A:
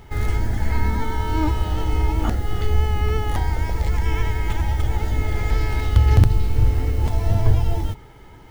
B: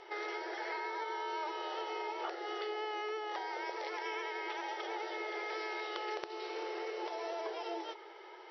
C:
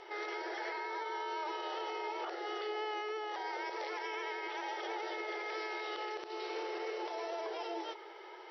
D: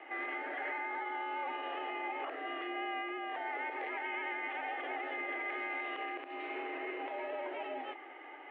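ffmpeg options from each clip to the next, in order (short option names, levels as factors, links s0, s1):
-af "afftfilt=real='re*between(b*sr/4096,330,5900)':imag='im*between(b*sr/4096,330,5900)':win_size=4096:overlap=0.75,acompressor=threshold=0.0178:ratio=4,volume=0.794"
-af "alimiter=level_in=2.66:limit=0.0631:level=0:latency=1:release=32,volume=0.376,volume=1.19"
-filter_complex "[0:a]aexciter=amount=3.6:drive=6.8:freq=2100,acrossover=split=410 2200:gain=0.178 1 0.0708[s0][s1][s2];[s0][s1][s2]amix=inputs=3:normalize=0,highpass=f=330:t=q:w=0.5412,highpass=f=330:t=q:w=1.307,lowpass=f=2900:t=q:w=0.5176,lowpass=f=2900:t=q:w=0.7071,lowpass=f=2900:t=q:w=1.932,afreqshift=-71,volume=1.19"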